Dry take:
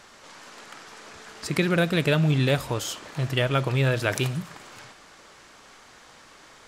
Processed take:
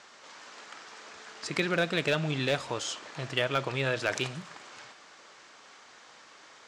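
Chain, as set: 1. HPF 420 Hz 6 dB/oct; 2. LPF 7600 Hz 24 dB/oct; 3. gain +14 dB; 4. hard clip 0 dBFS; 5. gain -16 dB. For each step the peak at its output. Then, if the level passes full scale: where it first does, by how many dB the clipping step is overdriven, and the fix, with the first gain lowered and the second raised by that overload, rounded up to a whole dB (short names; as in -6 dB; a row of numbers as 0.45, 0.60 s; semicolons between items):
-8.0, -8.0, +6.0, 0.0, -16.0 dBFS; step 3, 6.0 dB; step 3 +8 dB, step 5 -10 dB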